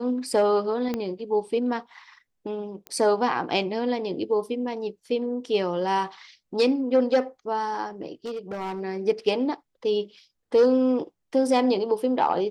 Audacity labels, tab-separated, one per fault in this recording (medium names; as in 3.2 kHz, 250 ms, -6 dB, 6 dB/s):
0.940000	0.940000	pop -15 dBFS
2.870000	2.870000	pop -20 dBFS
8.260000	8.810000	clipped -28 dBFS